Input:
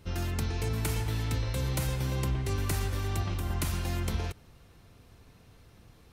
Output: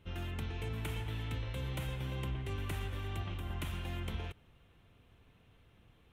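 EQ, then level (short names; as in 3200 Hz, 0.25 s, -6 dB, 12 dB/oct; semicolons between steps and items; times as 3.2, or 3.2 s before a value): resonant high shelf 3900 Hz -6.5 dB, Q 3; -8.0 dB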